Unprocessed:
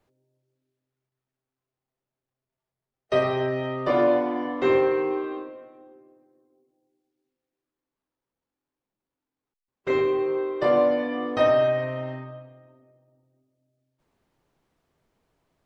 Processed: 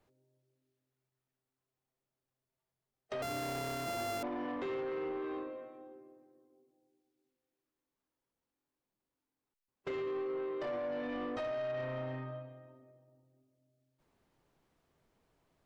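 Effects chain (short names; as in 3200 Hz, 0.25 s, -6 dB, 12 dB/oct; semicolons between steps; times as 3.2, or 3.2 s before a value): 3.22–4.23 sample sorter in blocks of 64 samples; limiter -20 dBFS, peak gain reduction 11 dB; compressor 2:1, threshold -33 dBFS, peak gain reduction 5.5 dB; soft clip -30.5 dBFS, distortion -15 dB; gain -2.5 dB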